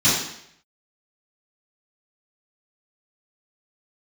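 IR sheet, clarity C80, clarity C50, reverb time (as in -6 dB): 5.0 dB, 1.5 dB, 0.70 s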